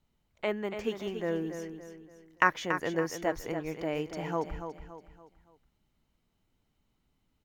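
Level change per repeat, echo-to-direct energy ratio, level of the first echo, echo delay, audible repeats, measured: -8.0 dB, -7.5 dB, -8.5 dB, 284 ms, 4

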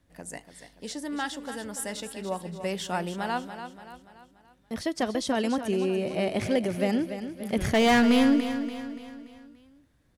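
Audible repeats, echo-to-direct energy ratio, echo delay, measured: 4, -9.0 dB, 288 ms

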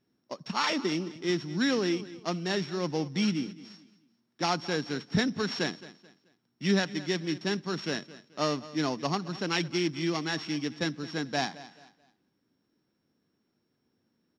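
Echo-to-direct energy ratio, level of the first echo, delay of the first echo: -17.0 dB, -17.5 dB, 217 ms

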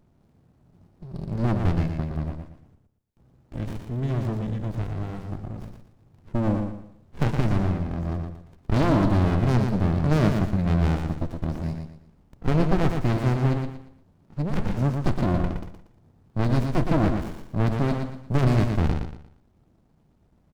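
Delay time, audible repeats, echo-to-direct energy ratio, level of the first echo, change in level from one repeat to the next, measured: 117 ms, 3, -5.0 dB, -5.5 dB, -10.0 dB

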